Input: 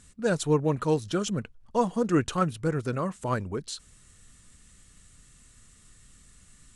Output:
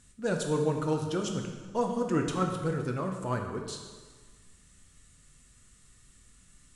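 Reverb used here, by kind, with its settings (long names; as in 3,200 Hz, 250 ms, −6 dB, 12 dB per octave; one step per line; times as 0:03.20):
dense smooth reverb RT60 1.5 s, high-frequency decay 0.85×, DRR 2.5 dB
level −5 dB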